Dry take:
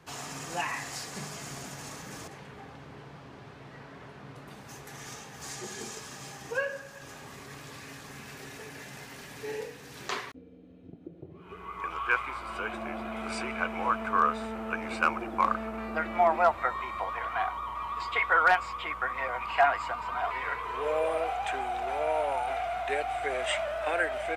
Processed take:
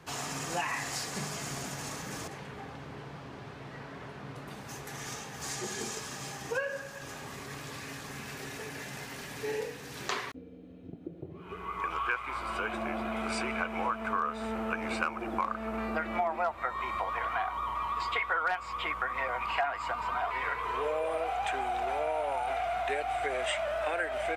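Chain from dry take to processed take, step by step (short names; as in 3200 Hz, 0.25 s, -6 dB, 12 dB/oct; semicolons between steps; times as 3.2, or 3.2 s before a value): compressor 4:1, threshold -32 dBFS, peak gain reduction 12 dB; gain +3 dB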